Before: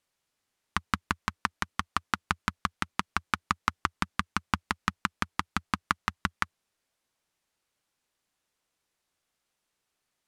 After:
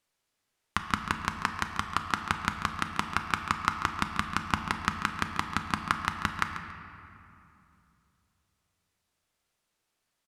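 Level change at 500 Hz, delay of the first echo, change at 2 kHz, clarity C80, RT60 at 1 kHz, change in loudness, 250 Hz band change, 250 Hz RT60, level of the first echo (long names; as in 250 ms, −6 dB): +2.0 dB, 140 ms, +1.0 dB, 6.5 dB, 2.7 s, +1.0 dB, +1.0 dB, 3.1 s, −12.5 dB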